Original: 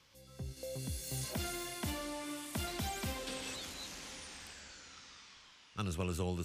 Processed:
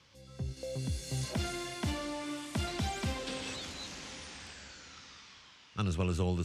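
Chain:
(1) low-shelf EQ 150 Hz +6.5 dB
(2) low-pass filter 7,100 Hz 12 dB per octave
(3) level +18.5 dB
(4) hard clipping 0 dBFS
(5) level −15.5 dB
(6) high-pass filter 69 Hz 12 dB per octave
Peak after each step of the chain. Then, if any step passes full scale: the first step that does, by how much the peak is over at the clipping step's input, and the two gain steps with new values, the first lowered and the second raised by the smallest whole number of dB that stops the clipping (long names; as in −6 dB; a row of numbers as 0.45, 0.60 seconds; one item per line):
−23.5, −23.5, −5.0, −5.0, −20.5, −20.0 dBFS
no step passes full scale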